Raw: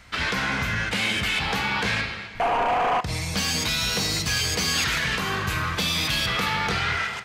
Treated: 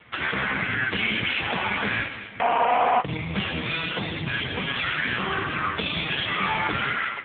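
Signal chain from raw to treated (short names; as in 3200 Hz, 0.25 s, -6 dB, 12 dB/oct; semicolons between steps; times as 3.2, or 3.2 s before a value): gain +5 dB; AMR-NB 5.15 kbps 8000 Hz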